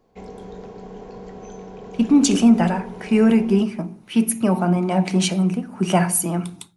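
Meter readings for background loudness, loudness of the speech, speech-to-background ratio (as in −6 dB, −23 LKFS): −38.0 LKFS, −19.0 LKFS, 19.0 dB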